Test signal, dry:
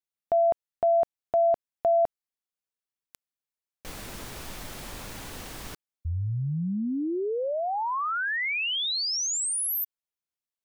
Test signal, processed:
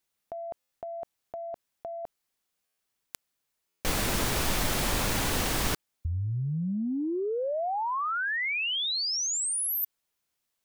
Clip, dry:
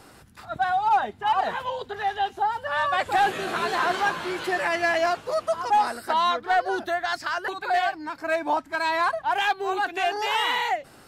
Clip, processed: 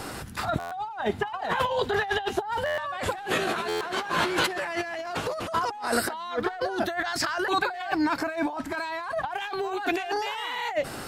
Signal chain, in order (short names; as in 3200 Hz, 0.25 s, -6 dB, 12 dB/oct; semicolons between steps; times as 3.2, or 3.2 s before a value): negative-ratio compressor -35 dBFS, ratio -1; stuck buffer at 0.59/2.65/3.68, samples 512, times 10; gain +5 dB